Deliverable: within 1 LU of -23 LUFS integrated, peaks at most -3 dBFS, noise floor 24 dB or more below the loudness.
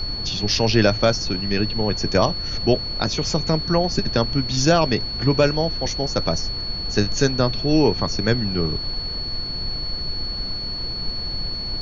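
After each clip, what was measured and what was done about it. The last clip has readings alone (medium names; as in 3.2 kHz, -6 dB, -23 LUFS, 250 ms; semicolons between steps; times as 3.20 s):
steady tone 4.4 kHz; tone level -27 dBFS; noise floor -28 dBFS; noise floor target -46 dBFS; loudness -21.5 LUFS; peak level -4.0 dBFS; loudness target -23.0 LUFS
-> band-stop 4.4 kHz, Q 30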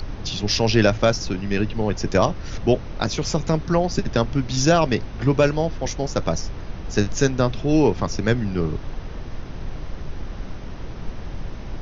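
steady tone not found; noise floor -34 dBFS; noise floor target -46 dBFS
-> noise print and reduce 12 dB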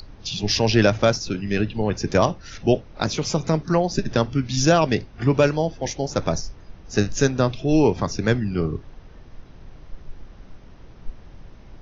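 noise floor -45 dBFS; noise floor target -46 dBFS
-> noise print and reduce 6 dB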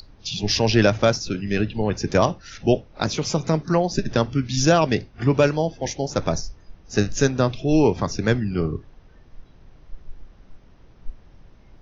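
noise floor -50 dBFS; loudness -22.0 LUFS; peak level -4.0 dBFS; loudness target -23.0 LUFS
-> trim -1 dB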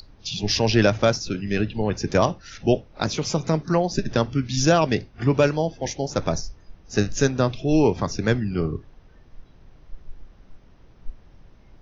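loudness -23.0 LUFS; peak level -5.0 dBFS; noise floor -51 dBFS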